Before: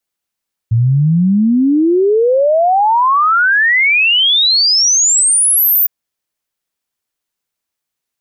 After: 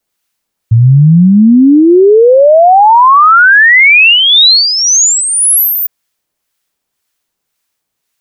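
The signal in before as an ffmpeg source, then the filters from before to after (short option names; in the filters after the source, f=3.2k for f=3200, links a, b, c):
-f lavfi -i "aevalsrc='0.398*clip(min(t,5.16-t)/0.01,0,1)*sin(2*PI*110*5.16/log(15000/110)*(exp(log(15000/110)*t/5.16)-1))':d=5.16:s=44100"
-filter_complex "[0:a]acrossover=split=2800[a][b];[b]acompressor=threshold=-19dB:ratio=4:attack=1:release=60[c];[a][c]amix=inputs=2:normalize=0,acrossover=split=980[d][e];[d]aeval=exprs='val(0)*(1-0.5/2+0.5/2*cos(2*PI*1.9*n/s))':c=same[f];[e]aeval=exprs='val(0)*(1-0.5/2-0.5/2*cos(2*PI*1.9*n/s))':c=same[g];[f][g]amix=inputs=2:normalize=0,alimiter=level_in=12dB:limit=-1dB:release=50:level=0:latency=1"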